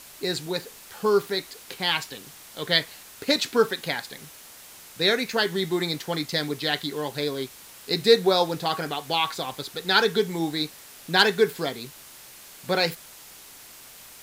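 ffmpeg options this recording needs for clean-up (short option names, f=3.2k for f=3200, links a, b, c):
-af "adeclick=t=4,afwtdn=0.0056"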